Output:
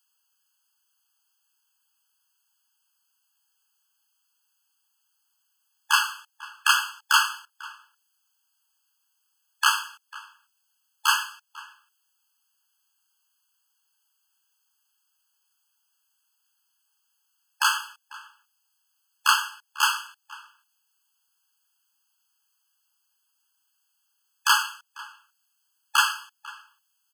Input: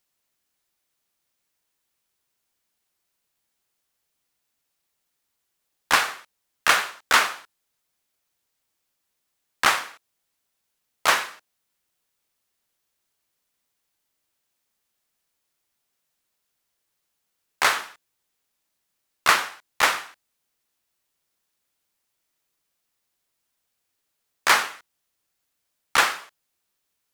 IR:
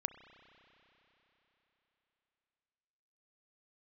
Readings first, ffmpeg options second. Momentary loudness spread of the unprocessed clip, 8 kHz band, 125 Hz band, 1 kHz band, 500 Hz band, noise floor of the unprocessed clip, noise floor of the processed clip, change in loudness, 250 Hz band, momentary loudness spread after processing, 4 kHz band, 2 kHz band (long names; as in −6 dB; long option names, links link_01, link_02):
13 LU, 0.0 dB, below −40 dB, −1.5 dB, below −40 dB, −78 dBFS, −74 dBFS, −1.5 dB, below −40 dB, 21 LU, +1.0 dB, −2.0 dB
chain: -filter_complex "[0:a]lowshelf=frequency=740:width_type=q:width=3:gain=9,asplit=2[link_01][link_02];[link_02]adelay=495.6,volume=-21dB,highshelf=frequency=4000:gain=-11.2[link_03];[link_01][link_03]amix=inputs=2:normalize=0,asplit=2[link_04][link_05];[link_05]acompressor=threshold=-40dB:ratio=6,volume=-3dB[link_06];[link_04][link_06]amix=inputs=2:normalize=0,afftfilt=real='re*eq(mod(floor(b*sr/1024/860),2),1)':imag='im*eq(mod(floor(b*sr/1024/860),2),1)':win_size=1024:overlap=0.75,volume=3dB"